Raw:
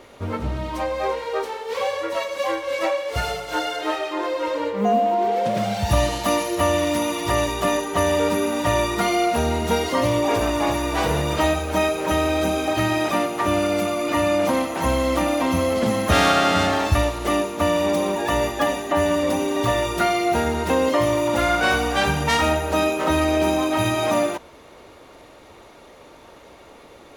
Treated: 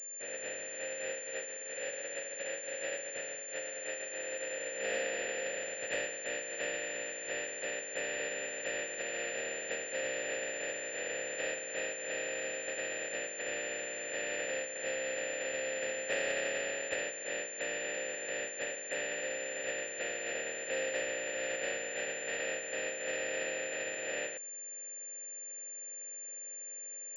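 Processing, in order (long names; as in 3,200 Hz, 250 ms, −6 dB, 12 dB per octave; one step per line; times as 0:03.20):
compressing power law on the bin magnitudes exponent 0.14
formant filter e
switching amplifier with a slow clock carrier 7,200 Hz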